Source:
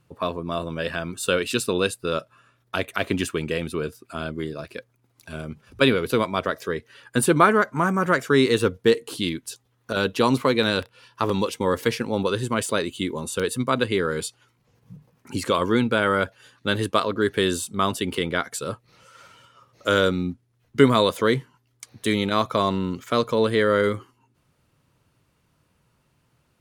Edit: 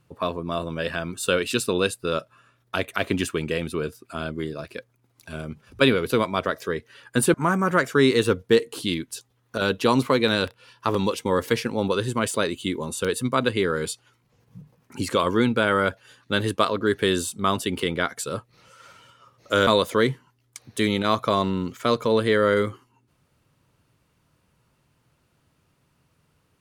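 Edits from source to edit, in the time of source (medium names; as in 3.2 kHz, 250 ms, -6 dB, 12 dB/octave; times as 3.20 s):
7.34–7.69 s: delete
20.02–20.94 s: delete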